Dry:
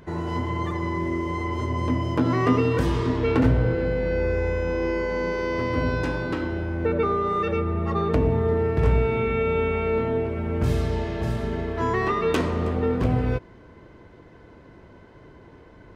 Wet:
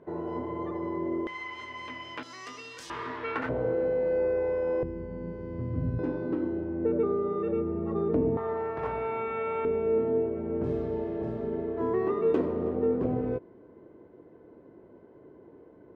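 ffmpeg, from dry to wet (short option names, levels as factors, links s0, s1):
-af "asetnsamples=n=441:p=0,asendcmd='1.27 bandpass f 2500;2.23 bandpass f 6200;2.9 bandpass f 1500;3.49 bandpass f 570;4.83 bandpass f 130;5.99 bandpass f 320;8.37 bandpass f 970;9.65 bandpass f 380',bandpass=f=480:t=q:w=1.4:csg=0"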